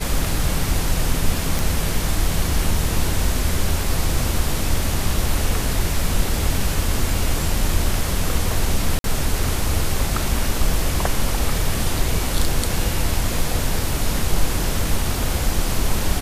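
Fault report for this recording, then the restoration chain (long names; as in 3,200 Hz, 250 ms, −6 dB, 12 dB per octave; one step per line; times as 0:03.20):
0:01.59: click
0:08.99–0:09.04: drop-out 52 ms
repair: click removal
repair the gap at 0:08.99, 52 ms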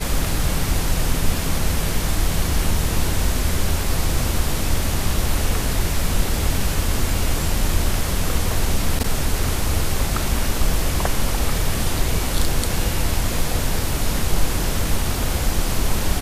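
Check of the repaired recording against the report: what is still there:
none of them is left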